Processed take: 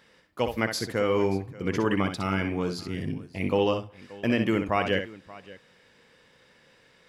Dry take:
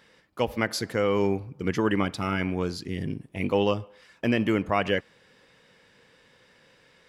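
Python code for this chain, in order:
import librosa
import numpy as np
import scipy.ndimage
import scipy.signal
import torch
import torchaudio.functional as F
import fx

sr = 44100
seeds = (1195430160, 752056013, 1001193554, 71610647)

y = fx.echo_multitap(x, sr, ms=(62, 580), db=(-7.5, -19.5))
y = F.gain(torch.from_numpy(y), -1.0).numpy()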